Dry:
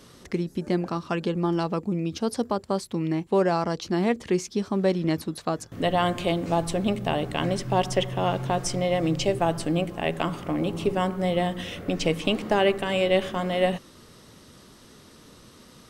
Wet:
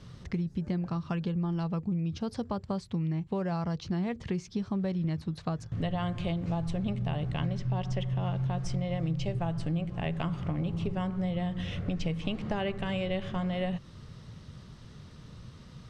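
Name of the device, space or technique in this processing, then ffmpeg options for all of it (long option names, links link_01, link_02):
jukebox: -filter_complex "[0:a]asettb=1/sr,asplit=3[link_01][link_02][link_03];[link_01]atrim=end=7.384[link_04];[link_02]atrim=start=7.38:end=7.99,asetpts=PTS-STARTPTS,afade=type=in:duration=0.004:curve=qsin,afade=type=out:start_time=0.606:duration=0.004:curve=qsin,lowpass=frequency=7700:width=0.5412,lowpass=frequency=7700:width=1.3066[link_05];[link_03]atrim=start=7.986[link_06];[link_04][link_05]acrossfade=duration=0.004:curve1=hsin:curve2=qsin[link_07];[link_07][link_06]acrossfade=duration=0.004:curve1=qsin:curve2=hsin,lowpass=5200,lowshelf=frequency=200:width_type=q:width=1.5:gain=11.5,acompressor=threshold=-25dB:ratio=4,volume=-4dB"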